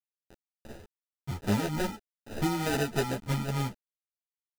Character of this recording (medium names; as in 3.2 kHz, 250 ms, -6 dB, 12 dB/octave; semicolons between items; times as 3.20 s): a quantiser's noise floor 8-bit, dither none; tremolo triangle 3.4 Hz, depth 60%; aliases and images of a low sample rate 1.1 kHz, jitter 0%; a shimmering, thickened sound